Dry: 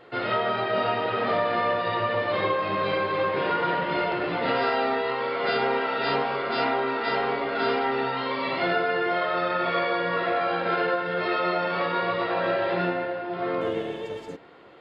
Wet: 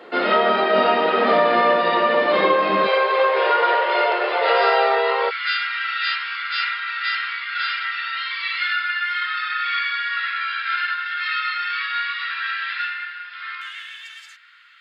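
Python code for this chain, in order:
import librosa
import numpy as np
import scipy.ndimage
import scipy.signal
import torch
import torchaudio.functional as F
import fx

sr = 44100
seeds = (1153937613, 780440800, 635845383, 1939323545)

y = fx.steep_highpass(x, sr, hz=fx.steps((0.0, 180.0), (2.86, 410.0), (5.29, 1400.0)), slope=48)
y = y * 10.0 ** (8.0 / 20.0)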